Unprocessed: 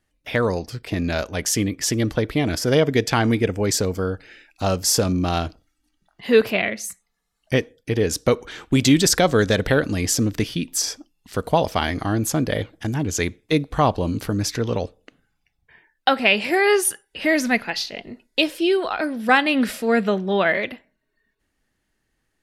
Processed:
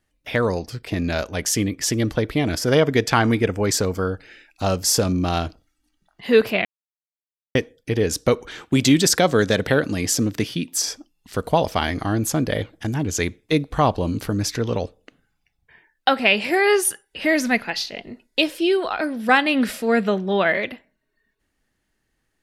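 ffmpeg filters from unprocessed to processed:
ffmpeg -i in.wav -filter_complex "[0:a]asettb=1/sr,asplit=3[link_01][link_02][link_03];[link_01]atrim=end=2.684[link_04];[link_02]atrim=start=2.68:end=4.08,asetpts=PTS-STARTPTS,afade=type=in:duration=0.004:curve=qsin,afade=type=out:start_time=1.396:duration=0.004:curve=qsin,equalizer=frequency=1200:width_type=o:width=1.1:gain=4.5[link_05];[link_03]atrim=start=4.076[link_06];[link_04][link_05]acrossfade=duration=0.004:curve1=hsin:curve2=qsin[link_07];[link_07][link_06]acrossfade=duration=0.004:curve1=qsin:curve2=hsin,asettb=1/sr,asplit=3[link_08][link_09][link_10];[link_08]atrim=end=8.624[link_11];[link_09]atrim=start=8.62:end=10.89,asetpts=PTS-STARTPTS,afade=type=in:duration=0.004:curve=qsin,afade=type=out:start_time=2.266:duration=0.004:curve=qsin,highpass=100[link_12];[link_10]atrim=start=10.886[link_13];[link_11][link_12]acrossfade=duration=0.004:curve1=hsin:curve2=qsin[link_14];[link_14][link_13]acrossfade=duration=0.004:curve1=qsin:curve2=hsin,asplit=3[link_15][link_16][link_17];[link_15]atrim=end=6.65,asetpts=PTS-STARTPTS,afade=type=out:start_time=6.646:duration=0.004:curve=hsin[link_18];[link_16]atrim=start=6.65:end=7.55,asetpts=PTS-STARTPTS,volume=0[link_19];[link_17]atrim=start=7.55,asetpts=PTS-STARTPTS,afade=type=in:duration=0.004:curve=hsin[link_20];[link_18][link_19][link_20]concat=n=3:v=0:a=1" out.wav

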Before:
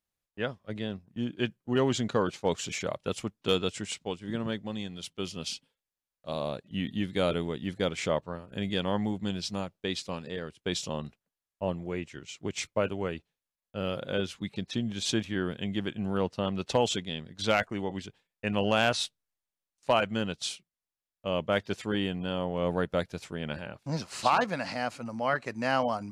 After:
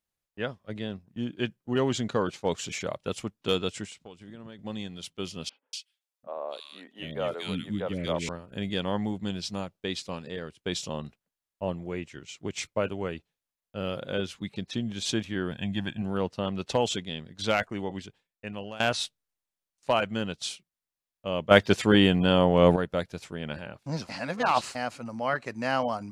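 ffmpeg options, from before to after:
ffmpeg -i in.wav -filter_complex "[0:a]asettb=1/sr,asplit=3[link_01][link_02][link_03];[link_01]atrim=end=3.854[link_04];[link_02]atrim=start=3.85:end=4.59,asetpts=PTS-STARTPTS,afade=type=in:duration=0.004:curve=qsin,afade=type=out:start_time=0.736:duration=0.004:curve=qsin,acompressor=threshold=-43dB:ratio=4:attack=3.2:release=140:knee=1:detection=peak[link_05];[link_03]atrim=start=4.586[link_06];[link_04][link_05]acrossfade=duration=0.004:curve1=hsin:curve2=qsin[link_07];[link_07][link_06]acrossfade=duration=0.004:curve1=qsin:curve2=hsin,asettb=1/sr,asplit=3[link_08][link_09][link_10];[link_08]atrim=end=5.494[link_11];[link_09]atrim=start=5.49:end=8.29,asetpts=PTS-STARTPTS,afade=type=in:duration=0.004:curve=qsin,afade=type=out:start_time=2.796:duration=0.004:curve=qsin,acrossover=split=400|1700[link_12][link_13][link_14];[link_14]adelay=240[link_15];[link_12]adelay=740[link_16];[link_16][link_13][link_15]amix=inputs=3:normalize=0,atrim=end_sample=123480[link_17];[link_10]atrim=start=8.286[link_18];[link_11][link_17]acrossfade=duration=0.004:curve1=hsin:curve2=qsin[link_19];[link_19][link_18]acrossfade=duration=0.004:curve1=qsin:curve2=hsin,asettb=1/sr,asplit=3[link_20][link_21][link_22];[link_20]atrim=end=15.514[link_23];[link_21]atrim=start=15.51:end=16.02,asetpts=PTS-STARTPTS,afade=type=in:duration=0.004:curve=qsin,afade=type=out:start_time=0.506:duration=0.004:curve=qsin,aecho=1:1:1.2:0.65,atrim=end_sample=22491[link_24];[link_22]atrim=start=16.016[link_25];[link_23][link_24]acrossfade=duration=0.004:curve1=hsin:curve2=qsin[link_26];[link_26][link_25]acrossfade=duration=0.004:curve1=qsin:curve2=hsin,asplit=6[link_27][link_28][link_29][link_30][link_31][link_32];[link_27]atrim=end=18.8,asetpts=PTS-STARTPTS,afade=type=out:start_time=17.93:duration=0.87:silence=0.11885[link_33];[link_28]atrim=start=18.8:end=21.512,asetpts=PTS-STARTPTS,afade=type=in:duration=0.004:curve=hsin:silence=0.11885[link_34];[link_29]atrim=start=21.508:end=22.762,asetpts=PTS-STARTPTS,volume=10.5dB[link_35];[link_30]atrim=start=22.758:end=24.092[link_36];[link_31]atrim=start=24.088:end=24.752,asetpts=PTS-STARTPTS,areverse[link_37];[link_32]atrim=start=24.748[link_38];[link_33][link_34]concat=n=2:v=0:a=1[link_39];[link_39][link_35]acrossfade=duration=0.004:curve1=hsin:curve2=hsin[link_40];[link_40][link_36]acrossfade=duration=0.004:curve1=hsin:curve2=hsin[link_41];[link_41][link_37]acrossfade=duration=0.004:curve1=hsin:curve2=hsin[link_42];[link_42][link_38]acrossfade=duration=0.004:curve1=hsin:curve2=hsin" out.wav

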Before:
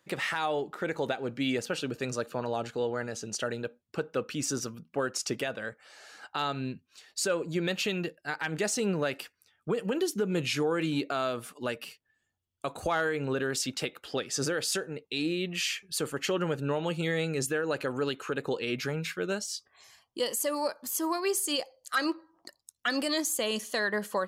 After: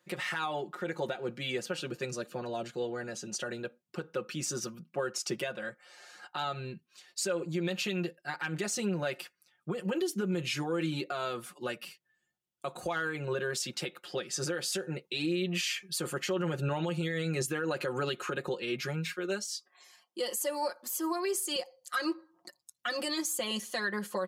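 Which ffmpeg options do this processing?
ffmpeg -i in.wav -filter_complex "[0:a]asettb=1/sr,asplit=3[link_01][link_02][link_03];[link_01]atrim=end=2.054[link_04];[link_02]atrim=start=2.05:end=3.06,asetpts=PTS-STARTPTS,afade=type=in:duration=0.004:curve=qsin,afade=type=out:start_time=1.006:duration=0.004:curve=qsin,equalizer=frequency=1100:width=1.1:gain=-5[link_05];[link_03]atrim=start=3.056[link_06];[link_04][link_05]acrossfade=duration=0.004:curve1=hsin:curve2=qsin[link_07];[link_07][link_06]acrossfade=duration=0.004:curve1=qsin:curve2=hsin,asettb=1/sr,asplit=3[link_08][link_09][link_10];[link_08]atrim=end=19.134[link_11];[link_09]atrim=start=19.13:end=21.56,asetpts=PTS-STARTPTS,afade=type=in:duration=0.004:curve=qsin,afade=type=out:start_time=2.426:duration=0.004:curve=qsin,highpass=frequency=220:width=0.5412,highpass=frequency=220:width=1.3066[link_12];[link_10]atrim=start=21.556[link_13];[link_11][link_12]acrossfade=duration=0.004:curve1=hsin:curve2=qsin[link_14];[link_14][link_13]acrossfade=duration=0.004:curve1=qsin:curve2=hsin,asplit=3[link_15][link_16][link_17];[link_15]atrim=end=14.872[link_18];[link_16]atrim=start=14.868:end=18.552,asetpts=PTS-STARTPTS,volume=5dB[link_19];[link_17]atrim=start=18.548[link_20];[link_18][link_19]acrossfade=duration=0.004:curve1=hsin:curve2=hsin[link_21];[link_21][link_20]acrossfade=duration=0.004:curve1=hsin:curve2=hsin,highpass=82,aecho=1:1:5.6:0.94,alimiter=limit=-18.5dB:level=0:latency=1:release=98,volume=-4.5dB" out.wav

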